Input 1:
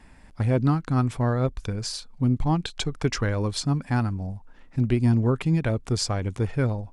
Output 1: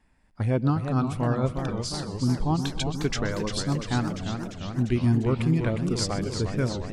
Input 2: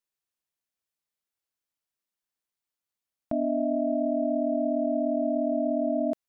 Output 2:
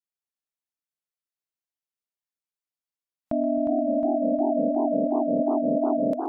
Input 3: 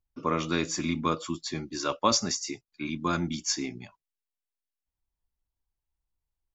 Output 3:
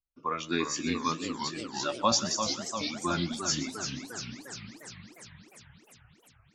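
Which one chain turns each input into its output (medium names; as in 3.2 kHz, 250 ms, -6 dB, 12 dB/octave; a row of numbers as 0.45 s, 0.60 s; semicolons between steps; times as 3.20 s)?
two-band feedback delay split 410 Hz, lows 264 ms, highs 125 ms, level -15 dB; spectral noise reduction 12 dB; modulated delay 352 ms, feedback 67%, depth 202 cents, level -7 dB; peak normalisation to -12 dBFS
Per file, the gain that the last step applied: -2.0 dB, +2.5 dB, -1.0 dB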